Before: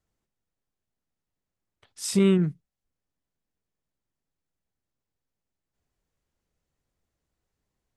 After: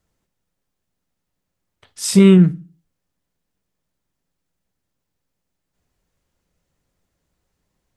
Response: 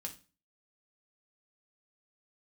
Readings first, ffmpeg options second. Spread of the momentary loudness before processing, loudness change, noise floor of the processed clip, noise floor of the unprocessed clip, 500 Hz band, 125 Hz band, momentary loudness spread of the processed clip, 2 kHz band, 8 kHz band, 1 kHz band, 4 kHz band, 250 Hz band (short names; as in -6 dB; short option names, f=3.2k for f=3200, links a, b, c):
11 LU, +11.5 dB, -78 dBFS, under -85 dBFS, +8.5 dB, +12.0 dB, 10 LU, +9.0 dB, +9.0 dB, +8.5 dB, +8.5 dB, +11.5 dB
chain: -filter_complex "[0:a]asplit=2[a][b];[1:a]atrim=start_sample=2205[c];[b][c]afir=irnorm=-1:irlink=0,volume=-2.5dB[d];[a][d]amix=inputs=2:normalize=0,volume=5.5dB"